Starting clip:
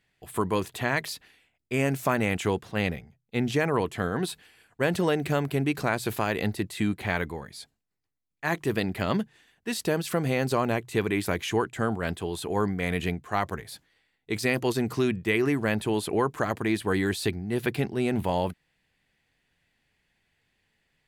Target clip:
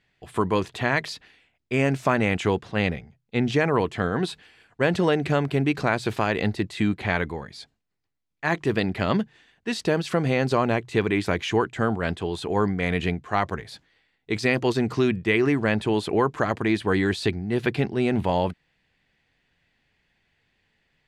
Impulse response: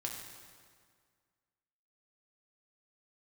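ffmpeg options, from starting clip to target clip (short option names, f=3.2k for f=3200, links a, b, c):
-af "lowpass=5.6k,volume=3.5dB"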